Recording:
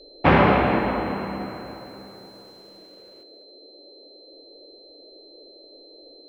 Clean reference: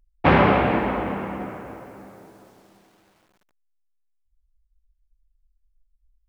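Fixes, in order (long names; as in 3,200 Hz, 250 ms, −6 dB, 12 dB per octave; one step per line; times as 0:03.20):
notch filter 4,100 Hz, Q 30
noise reduction from a noise print 20 dB
echo removal 214 ms −16.5 dB
level 0 dB, from 0:03.23 +11.5 dB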